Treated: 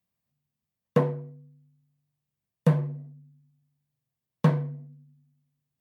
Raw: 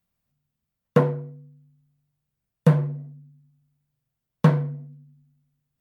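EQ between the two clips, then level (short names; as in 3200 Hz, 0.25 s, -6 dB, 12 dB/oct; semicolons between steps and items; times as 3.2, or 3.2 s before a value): HPF 82 Hz; notch 1400 Hz, Q 9.4; -4.0 dB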